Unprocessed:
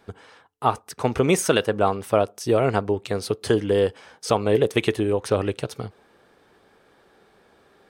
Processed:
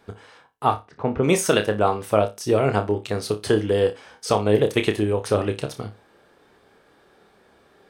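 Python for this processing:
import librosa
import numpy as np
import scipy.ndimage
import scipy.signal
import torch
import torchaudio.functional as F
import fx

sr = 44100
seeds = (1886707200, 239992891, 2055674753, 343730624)

p1 = fx.spacing_loss(x, sr, db_at_10k=41, at=(0.73, 1.22), fade=0.02)
y = p1 + fx.room_flutter(p1, sr, wall_m=4.9, rt60_s=0.22, dry=0)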